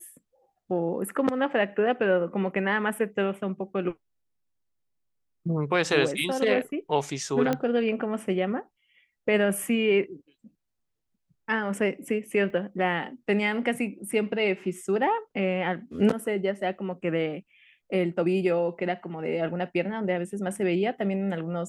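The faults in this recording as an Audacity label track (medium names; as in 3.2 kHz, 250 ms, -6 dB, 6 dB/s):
7.530000	7.530000	pop -13 dBFS
12.500000	12.500000	dropout 2.2 ms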